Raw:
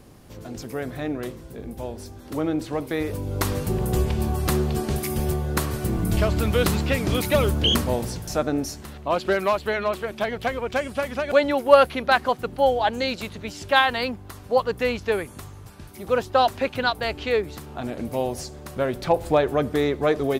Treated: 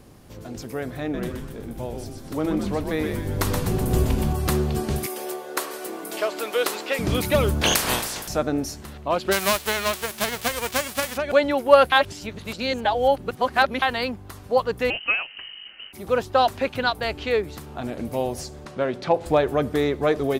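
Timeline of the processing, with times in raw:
1.01–4.33 frequency-shifting echo 0.124 s, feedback 50%, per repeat -110 Hz, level -4.5 dB
5.06–6.99 HPF 370 Hz 24 dB/oct
7.61–8.27 spectral limiter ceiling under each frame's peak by 28 dB
9.31–11.16 spectral whitening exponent 0.3
11.92–13.82 reverse
14.9–15.93 inverted band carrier 3000 Hz
18.65–19.26 BPF 140–5800 Hz

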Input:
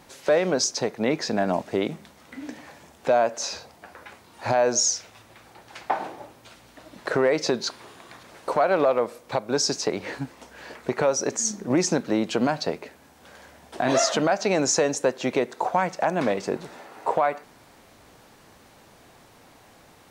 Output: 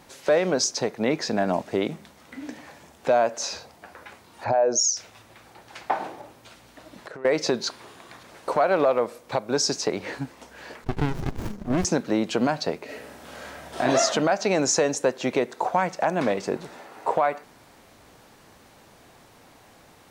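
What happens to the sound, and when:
4.44–4.97 formant sharpening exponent 1.5
6.21–7.25 compressor, threshold -37 dBFS
10.84–11.85 running maximum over 65 samples
12.84–13.8 reverb throw, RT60 0.94 s, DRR -8 dB

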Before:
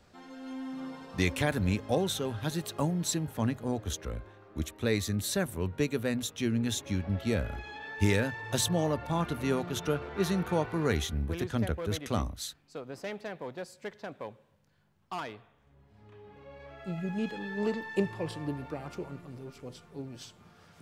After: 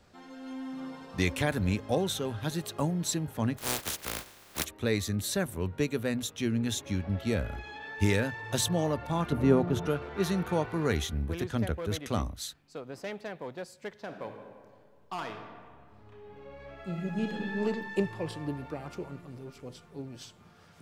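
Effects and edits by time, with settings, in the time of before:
3.57–4.64 spectral contrast lowered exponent 0.23
9.32–9.87 tilt shelf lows +8 dB, about 1400 Hz
13.93–17.58 reverb throw, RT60 1.9 s, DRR 4.5 dB

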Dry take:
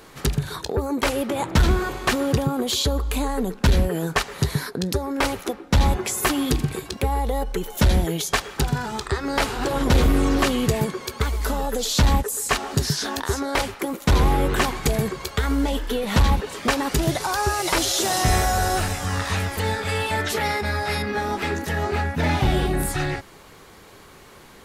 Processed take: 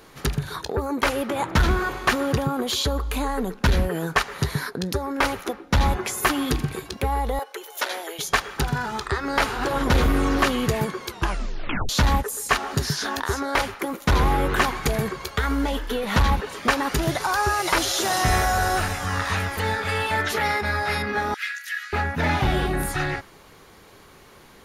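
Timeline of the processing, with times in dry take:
7.39–8.19 Bessel high-pass 610 Hz, order 8
11.05 tape stop 0.84 s
21.34–21.93 steep high-pass 1500 Hz 48 dB/oct
whole clip: notch 7900 Hz, Q 8.6; dynamic EQ 1400 Hz, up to +6 dB, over -38 dBFS, Q 0.85; gain -2.5 dB

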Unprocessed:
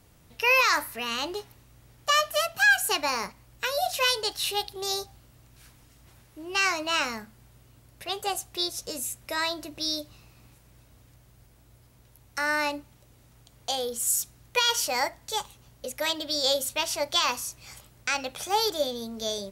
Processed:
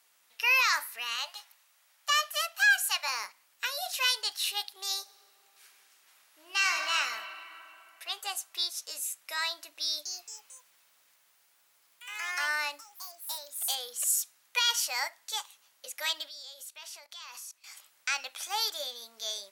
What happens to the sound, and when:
1.16–3.08 steep high-pass 510 Hz 72 dB/oct
5.01–6.93 reverb throw, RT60 3 s, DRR 2.5 dB
9.83–14.57 echoes that change speed 0.223 s, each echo +3 st, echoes 3, each echo -6 dB
16.28–17.64 level quantiser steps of 21 dB
whole clip: HPF 1200 Hz 12 dB/oct; gain -2 dB

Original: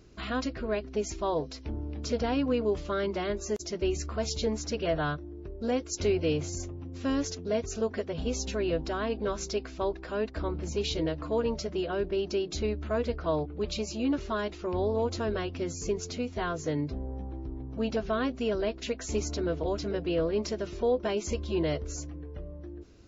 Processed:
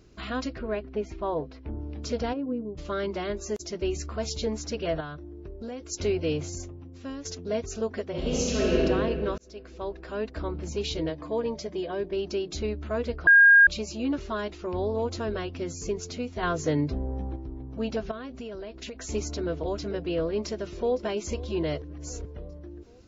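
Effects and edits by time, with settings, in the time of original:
0.58–1.78 LPF 3100 Hz -> 1900 Hz
2.32–2.77 band-pass 540 Hz -> 120 Hz, Q 1.5
5–5.88 compressor, threshold -33 dBFS
6.49–7.25 fade out, to -12 dB
8.1–8.82 reverb throw, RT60 2.4 s, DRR -6.5 dB
9.38–10.49 fade in equal-power
11.1–12.13 notch comb 1400 Hz
13.27–13.67 bleep 1620 Hz -11.5 dBFS
16.43–17.36 gain +5 dB
18.11–18.96 compressor 10:1, threshold -34 dBFS
20.26–20.98 echo throw 0.51 s, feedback 60%, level -18 dB
21.82–22.25 reverse

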